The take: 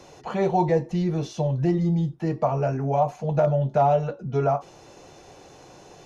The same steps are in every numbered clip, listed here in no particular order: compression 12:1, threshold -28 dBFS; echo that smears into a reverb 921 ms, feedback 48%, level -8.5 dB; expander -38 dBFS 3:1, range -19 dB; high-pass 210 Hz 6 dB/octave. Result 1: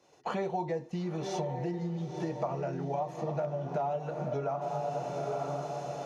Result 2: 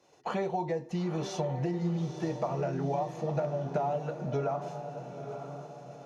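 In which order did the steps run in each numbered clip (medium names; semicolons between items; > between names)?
echo that smears into a reverb > compression > expander > high-pass; expander > high-pass > compression > echo that smears into a reverb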